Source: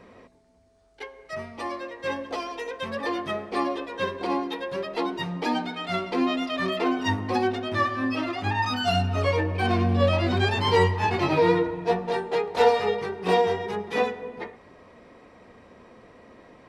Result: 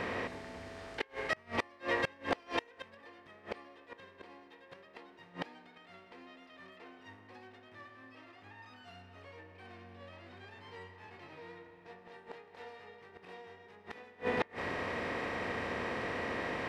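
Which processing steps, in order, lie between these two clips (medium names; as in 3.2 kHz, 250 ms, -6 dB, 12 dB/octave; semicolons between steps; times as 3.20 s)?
spectral levelling over time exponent 0.6; peaking EQ 1.9 kHz +7 dB 0.99 oct; inverted gate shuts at -15 dBFS, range -30 dB; trim -4 dB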